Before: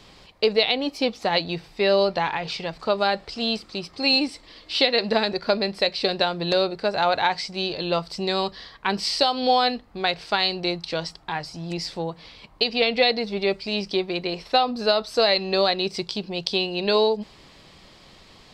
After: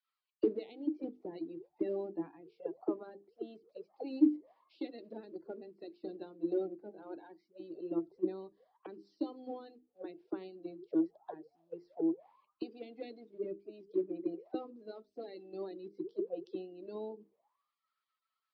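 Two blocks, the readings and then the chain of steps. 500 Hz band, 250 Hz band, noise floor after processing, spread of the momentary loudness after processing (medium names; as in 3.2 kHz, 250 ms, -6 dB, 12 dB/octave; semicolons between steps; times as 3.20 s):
-16.5 dB, -7.5 dB, under -85 dBFS, 15 LU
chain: coarse spectral quantiser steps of 30 dB; hum notches 50/100/150/200/250/300/350/400/450 Hz; auto-wah 320–1500 Hz, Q 18, down, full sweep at -25 dBFS; three bands expanded up and down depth 100%; trim +4 dB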